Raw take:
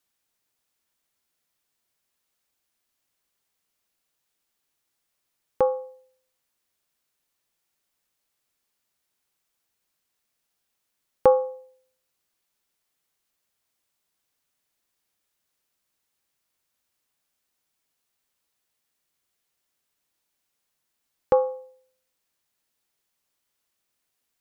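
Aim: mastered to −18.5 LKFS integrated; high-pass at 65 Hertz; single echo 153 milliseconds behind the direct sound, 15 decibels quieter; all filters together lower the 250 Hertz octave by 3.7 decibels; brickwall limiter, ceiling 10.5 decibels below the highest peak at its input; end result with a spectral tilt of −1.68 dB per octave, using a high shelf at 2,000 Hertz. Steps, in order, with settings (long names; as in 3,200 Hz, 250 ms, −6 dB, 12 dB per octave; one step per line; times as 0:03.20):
high-pass filter 65 Hz
parametric band 250 Hz −5 dB
high-shelf EQ 2,000 Hz −6.5 dB
brickwall limiter −16 dBFS
single-tap delay 153 ms −15 dB
level +11 dB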